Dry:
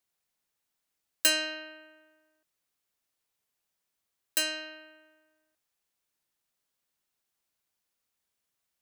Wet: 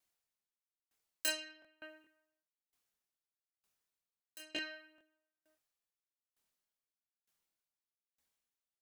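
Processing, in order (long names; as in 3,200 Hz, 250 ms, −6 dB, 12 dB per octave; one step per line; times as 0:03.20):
multi-voice chorus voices 4, 0.29 Hz, delay 26 ms, depth 3.5 ms
regular buffer underruns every 0.42 s, samples 1,024, repeat, from 0:00.34
tremolo with a ramp in dB decaying 1.1 Hz, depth 31 dB
level +4.5 dB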